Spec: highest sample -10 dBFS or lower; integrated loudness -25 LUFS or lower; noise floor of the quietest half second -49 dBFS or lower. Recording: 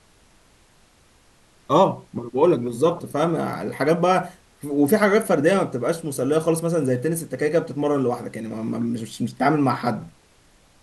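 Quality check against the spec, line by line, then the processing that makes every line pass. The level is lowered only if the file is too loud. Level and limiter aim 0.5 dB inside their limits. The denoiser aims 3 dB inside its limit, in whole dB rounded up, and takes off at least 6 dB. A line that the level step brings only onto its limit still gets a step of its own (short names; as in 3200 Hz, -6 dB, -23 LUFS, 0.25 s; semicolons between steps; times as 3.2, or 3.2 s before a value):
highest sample -4.0 dBFS: fail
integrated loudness -22.0 LUFS: fail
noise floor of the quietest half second -56 dBFS: OK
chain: gain -3.5 dB; limiter -10.5 dBFS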